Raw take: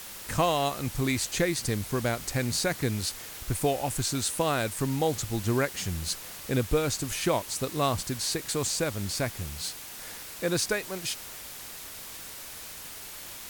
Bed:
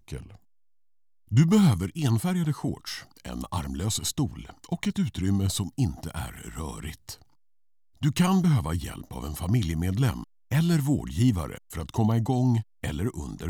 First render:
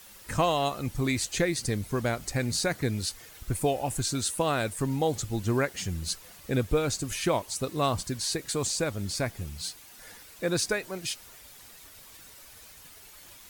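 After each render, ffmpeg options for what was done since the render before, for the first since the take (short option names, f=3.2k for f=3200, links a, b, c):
-af "afftdn=nr=10:nf=-42"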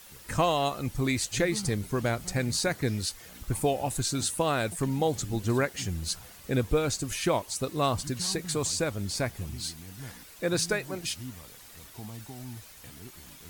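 -filter_complex "[1:a]volume=-19dB[a];[0:a][a]amix=inputs=2:normalize=0"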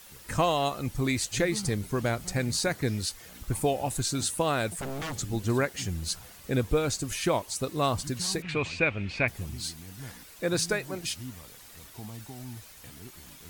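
-filter_complex "[0:a]asettb=1/sr,asplit=3[a][b][c];[a]atrim=end=4.694[d];[b]atrim=start=4.69:end=5.16,asetpts=PTS-STARTPTS,afade=t=in:d=0.004:c=qsin,afade=t=out:st=0.466:d=0.004:c=qsin,aeval=exprs='0.0335*(abs(mod(val(0)/0.0335+3,4)-2)-1)':c=same[e];[c]atrim=start=5.156[f];[d][e]acrossfade=d=0.004:c1=hsin:c2=qsin[g];[g][f]acrossfade=d=0.004:c1=qsin:c2=hsin,asettb=1/sr,asplit=3[h][i][j];[h]atrim=end=8.424[k];[i]atrim=start=8.42:end=9.28,asetpts=PTS-STARTPTS,afade=t=in:d=0.004:c=qsin,afade=t=out:st=0.856:d=0.004:c=qsin,lowpass=f=2.5k:t=q:w=7.7[l];[j]atrim=start=9.276[m];[k][l]acrossfade=d=0.004:c1=hsin:c2=qsin[n];[n][m]acrossfade=d=0.004:c1=qsin:c2=hsin"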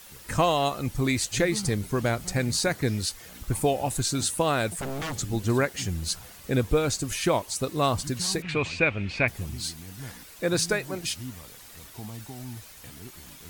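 -af "volume=2.5dB"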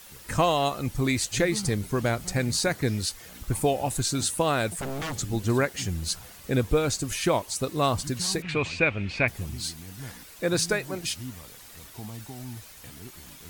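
-af anull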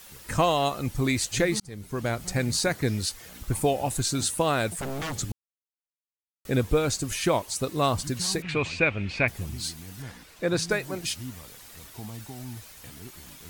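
-filter_complex "[0:a]asettb=1/sr,asplit=3[a][b][c];[a]atrim=end=10.024[d];[b]atrim=start=10.02:end=10.71,asetpts=PTS-STARTPTS,afade=t=in:d=0.004:c=qsin,afade=t=out:st=0.686:d=0.004:c=qsin,highshelf=f=7.3k:g=-11[e];[c]atrim=start=10.706[f];[d][e]acrossfade=d=0.004:c1=hsin:c2=qsin[g];[g][f]acrossfade=d=0.004:c1=qsin:c2=hsin,asplit=4[h][i][j][k];[h]atrim=end=1.6,asetpts=PTS-STARTPTS,afade=t=out:st=1.596:d=0.004:c=hsin[l];[i]atrim=start=1.6:end=5.32,asetpts=PTS-STARTPTS,afade=t=in:d=0.91:c=qsin,afade=t=out:st=3.716:d=0.004:c=hsin[m];[j]atrim=start=5.32:end=6.45,asetpts=PTS-STARTPTS,volume=0[n];[k]atrim=start=6.45,asetpts=PTS-STARTPTS,afade=t=in:d=0.004:c=hsin[o];[l][m][n][o]concat=n=4:v=0:a=1"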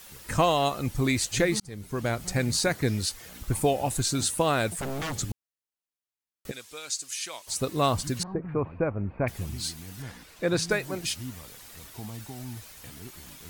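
-filter_complex "[0:a]asplit=3[a][b][c];[a]afade=t=out:st=6.5:d=0.02[d];[b]bandpass=f=6.3k:t=q:w=0.81,afade=t=in:st=6.5:d=0.02,afade=t=out:st=7.46:d=0.02[e];[c]afade=t=in:st=7.46:d=0.02[f];[d][e][f]amix=inputs=3:normalize=0,asettb=1/sr,asplit=3[g][h][i];[g]atrim=end=8.234[j];[h]atrim=start=8.23:end=9.27,asetpts=PTS-STARTPTS,afade=t=in:d=0.004:c=qsin,afade=t=out:st=1.036:d=0.004:c=qsin,lowpass=f=1.2k:w=0.5412,lowpass=f=1.2k:w=1.3066[k];[i]atrim=start=9.266[l];[j][k]acrossfade=d=0.004:c1=hsin:c2=qsin[m];[m][l]acrossfade=d=0.004:c1=qsin:c2=hsin"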